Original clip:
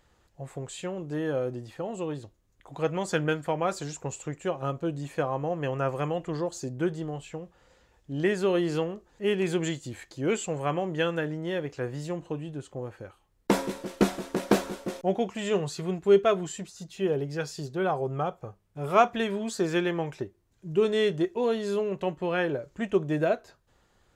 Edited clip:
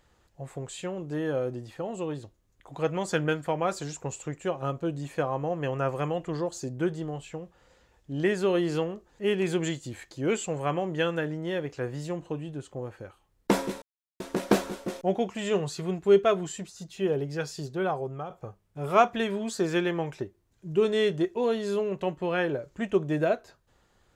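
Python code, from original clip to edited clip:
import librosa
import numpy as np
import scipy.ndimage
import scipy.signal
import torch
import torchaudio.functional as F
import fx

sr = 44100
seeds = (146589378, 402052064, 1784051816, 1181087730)

y = fx.edit(x, sr, fx.silence(start_s=13.82, length_s=0.38),
    fx.fade_out_to(start_s=17.59, length_s=0.71, curve='qsin', floor_db=-10.0), tone=tone)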